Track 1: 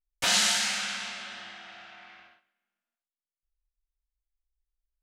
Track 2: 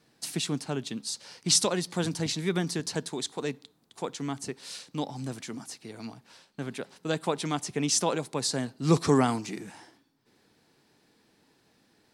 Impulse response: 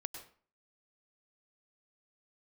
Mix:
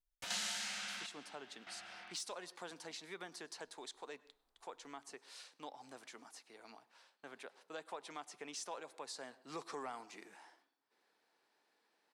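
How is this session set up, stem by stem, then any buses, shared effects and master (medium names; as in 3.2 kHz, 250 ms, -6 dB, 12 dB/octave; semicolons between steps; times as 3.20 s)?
-4.0 dB, 0.00 s, no send, trance gate "x.xxxxx....xx" 99 bpm -12 dB
-7.0 dB, 0.65 s, send -13.5 dB, high-pass 690 Hz 12 dB/octave; treble shelf 2.6 kHz -10 dB; saturation -19.5 dBFS, distortion -23 dB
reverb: on, RT60 0.45 s, pre-delay 93 ms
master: compression 2:1, threshold -47 dBFS, peak gain reduction 12.5 dB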